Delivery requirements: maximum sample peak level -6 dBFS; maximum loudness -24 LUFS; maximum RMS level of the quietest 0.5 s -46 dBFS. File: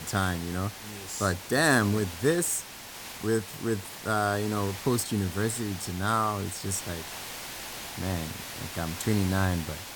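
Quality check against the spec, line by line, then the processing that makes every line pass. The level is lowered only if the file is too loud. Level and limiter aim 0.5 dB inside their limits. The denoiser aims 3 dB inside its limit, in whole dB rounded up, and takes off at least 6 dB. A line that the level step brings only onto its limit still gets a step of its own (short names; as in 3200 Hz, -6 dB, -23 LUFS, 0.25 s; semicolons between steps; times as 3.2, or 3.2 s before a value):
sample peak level -10.0 dBFS: OK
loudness -29.0 LUFS: OK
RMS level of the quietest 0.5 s -43 dBFS: fail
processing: denoiser 6 dB, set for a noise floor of -43 dBFS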